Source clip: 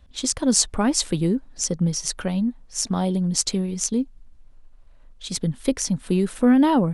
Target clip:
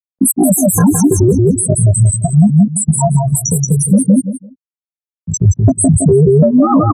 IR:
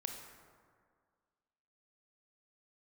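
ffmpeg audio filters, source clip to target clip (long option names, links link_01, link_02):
-filter_complex "[0:a]asuperstop=centerf=3200:order=20:qfactor=2.6,highshelf=frequency=2100:gain=7.5,afftfilt=real='re*gte(hypot(re,im),0.447)':imag='im*gte(hypot(re,im),0.447)':win_size=1024:overlap=0.75,acrossover=split=410[link_01][link_02];[link_02]acompressor=threshold=-19dB:ratio=8[link_03];[link_01][link_03]amix=inputs=2:normalize=0,asplit=2[link_04][link_05];[link_05]aecho=0:1:171|342|513:0.631|0.126|0.0252[link_06];[link_04][link_06]amix=inputs=2:normalize=0,acompressor=threshold=-23dB:ratio=4,asplit=2[link_07][link_08];[link_08]adelay=14,volume=-2dB[link_09];[link_07][link_09]amix=inputs=2:normalize=0,aphaser=in_gain=1:out_gain=1:delay=3.1:decay=0.25:speed=0.49:type=triangular,afreqshift=-90,asetrate=64194,aresample=44100,atempo=0.686977,alimiter=level_in=20.5dB:limit=-1dB:release=50:level=0:latency=1,adynamicequalizer=threshold=0.0355:dfrequency=1600:dqfactor=0.7:tfrequency=1600:tqfactor=0.7:attack=5:release=100:ratio=0.375:range=2.5:mode=cutabove:tftype=highshelf,volume=-1dB"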